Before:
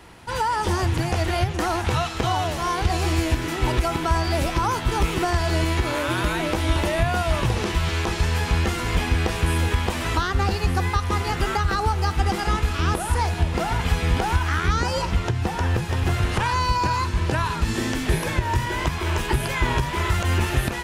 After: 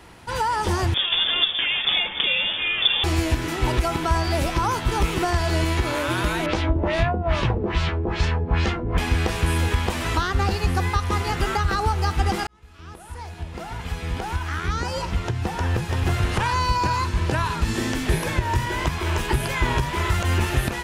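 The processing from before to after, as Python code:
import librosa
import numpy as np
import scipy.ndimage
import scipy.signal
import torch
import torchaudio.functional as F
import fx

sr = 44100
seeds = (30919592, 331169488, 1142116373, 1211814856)

y = fx.freq_invert(x, sr, carrier_hz=3500, at=(0.94, 3.04))
y = fx.filter_lfo_lowpass(y, sr, shape='sine', hz=2.4, low_hz=380.0, high_hz=5600.0, q=1.3, at=(6.46, 8.98))
y = fx.edit(y, sr, fx.fade_in_span(start_s=12.47, length_s=3.59), tone=tone)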